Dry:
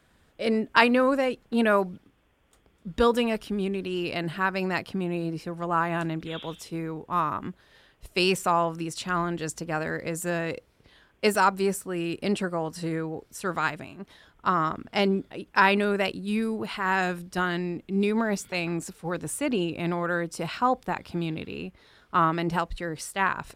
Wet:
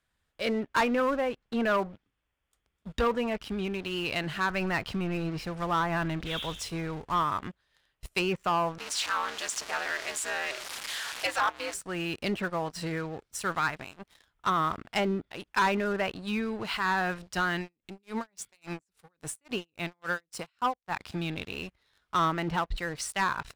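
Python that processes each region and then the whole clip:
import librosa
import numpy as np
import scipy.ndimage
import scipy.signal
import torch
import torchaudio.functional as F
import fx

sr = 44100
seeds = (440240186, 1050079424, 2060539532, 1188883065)

y = fx.chain(x, sr, fx.law_mismatch(coded='mu'),
    fx.low_shelf(hz=67.0, db=9.0), at=(4.5, 7.23))
y = fx.chain(y, sr, fx.zero_step(step_db=-28.5),
    fx.ring_mod(carrier_hz=120.0),
    fx.highpass(hz=620.0, slope=12), at=(8.78, 11.74))
y = fx.chain(y, sr, fx.low_shelf(hz=370.0, db=-2.0),
    fx.tremolo_db(hz=3.6, depth_db=29), at=(17.61, 21.0))
y = fx.env_lowpass_down(y, sr, base_hz=1500.0, full_db=-20.0)
y = fx.peak_eq(y, sr, hz=300.0, db=-9.5, octaves=2.9)
y = fx.leveller(y, sr, passes=3)
y = y * 10.0 ** (-7.0 / 20.0)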